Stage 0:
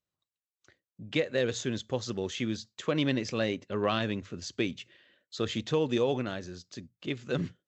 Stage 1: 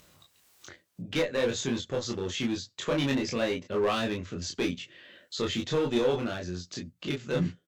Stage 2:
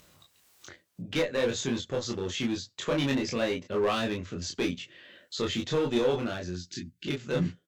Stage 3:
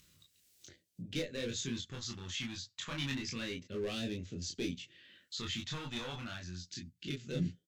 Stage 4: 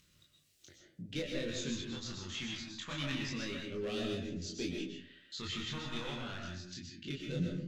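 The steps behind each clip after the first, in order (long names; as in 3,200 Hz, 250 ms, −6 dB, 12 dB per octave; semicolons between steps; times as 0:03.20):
in parallel at +1 dB: upward compression, threshold −31 dBFS; on the sum: asymmetric clip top −19 dBFS; ambience of single reflections 22 ms −3 dB, 34 ms −5 dB; level −6 dB
time-frequency box erased 0:06.56–0:07.07, 390–1,400 Hz
all-pass phaser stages 2, 0.29 Hz, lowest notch 410–1,100 Hz; level −5.5 dB
high-shelf EQ 7,500 Hz −8 dB; mains-hum notches 60/120 Hz; comb and all-pass reverb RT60 0.6 s, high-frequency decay 0.45×, pre-delay 85 ms, DRR 1 dB; level −1 dB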